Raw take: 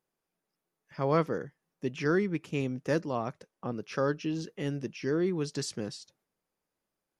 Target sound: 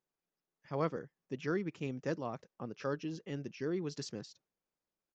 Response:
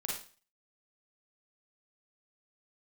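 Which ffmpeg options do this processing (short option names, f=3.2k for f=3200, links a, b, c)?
-af "atempo=1.4,aresample=16000,aresample=44100,volume=-7dB"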